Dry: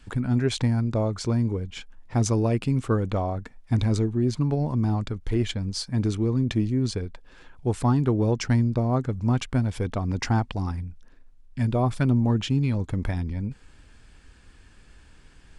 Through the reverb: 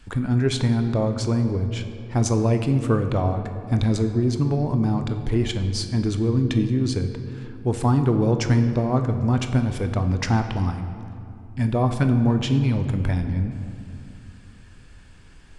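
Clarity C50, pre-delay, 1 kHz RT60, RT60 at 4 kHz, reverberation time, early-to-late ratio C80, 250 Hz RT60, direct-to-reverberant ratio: 8.5 dB, 22 ms, 2.5 s, 1.5 s, 2.6 s, 9.5 dB, 3.4 s, 6.5 dB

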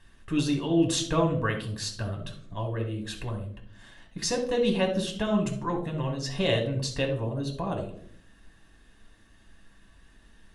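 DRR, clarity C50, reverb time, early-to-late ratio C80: 1.0 dB, 8.0 dB, 0.60 s, 12.5 dB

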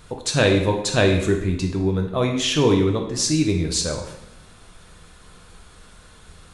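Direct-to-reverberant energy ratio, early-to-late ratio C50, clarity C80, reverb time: 2.0 dB, 6.5 dB, 9.5 dB, 0.85 s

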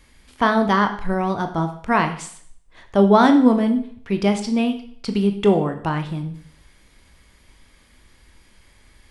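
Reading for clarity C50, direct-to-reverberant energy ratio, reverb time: 11.0 dB, 6.5 dB, 0.55 s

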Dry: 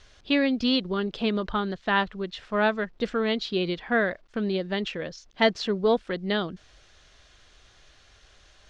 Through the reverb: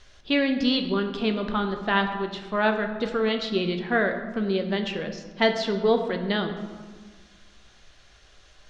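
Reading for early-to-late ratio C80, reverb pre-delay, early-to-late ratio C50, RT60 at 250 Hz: 9.5 dB, 5 ms, 8.0 dB, 2.0 s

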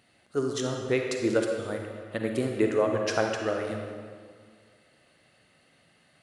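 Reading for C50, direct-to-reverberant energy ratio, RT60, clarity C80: 2.5 dB, 2.0 dB, 2.0 s, 4.0 dB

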